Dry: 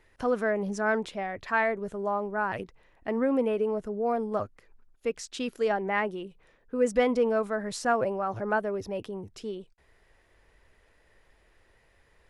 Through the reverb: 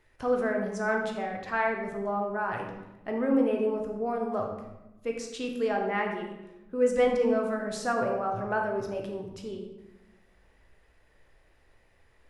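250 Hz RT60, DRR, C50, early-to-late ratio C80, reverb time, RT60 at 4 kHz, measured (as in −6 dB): 1.4 s, 1.0 dB, 4.5 dB, 7.0 dB, 1.0 s, 0.65 s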